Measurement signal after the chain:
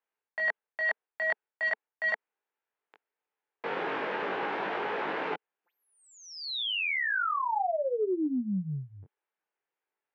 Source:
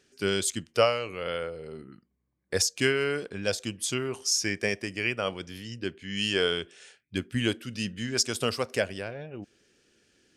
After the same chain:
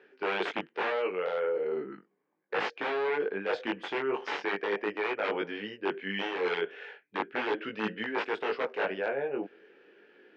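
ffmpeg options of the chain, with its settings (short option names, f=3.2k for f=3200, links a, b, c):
-af "aeval=exprs='(mod(11.2*val(0)+1,2)-1)/11.2':c=same,flanger=delay=18.5:depth=3.4:speed=0.38,acontrast=26,highpass=f=230:w=0.5412,highpass=f=230:w=1.3066,equalizer=f=240:t=q:w=4:g=-7,equalizer=f=440:t=q:w=4:g=7,equalizer=f=860:t=q:w=4:g=7,equalizer=f=1.6k:t=q:w=4:g=4,lowpass=f=2.6k:w=0.5412,lowpass=f=2.6k:w=1.3066,areverse,acompressor=threshold=-33dB:ratio=8,areverse,volume=5.5dB"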